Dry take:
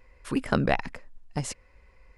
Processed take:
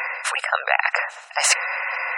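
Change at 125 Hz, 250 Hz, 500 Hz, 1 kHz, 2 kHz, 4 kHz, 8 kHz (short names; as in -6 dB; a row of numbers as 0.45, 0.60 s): under -40 dB, under -40 dB, +0.5 dB, +10.0 dB, +16.0 dB, +15.5 dB, +18.0 dB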